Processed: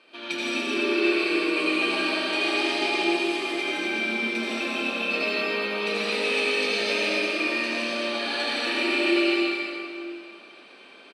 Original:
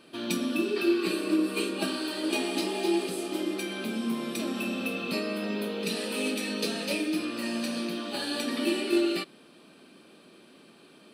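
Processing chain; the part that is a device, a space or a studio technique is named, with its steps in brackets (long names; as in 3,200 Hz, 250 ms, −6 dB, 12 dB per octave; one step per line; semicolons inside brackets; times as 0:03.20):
station announcement (band-pass filter 480–4,900 Hz; parametric band 2,300 Hz +8 dB 0.29 octaves; loudspeakers that aren't time-aligned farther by 55 metres −5 dB, 69 metres −11 dB, 93 metres −9 dB; convolution reverb RT60 2.3 s, pre-delay 73 ms, DRR −6 dB)
level −1 dB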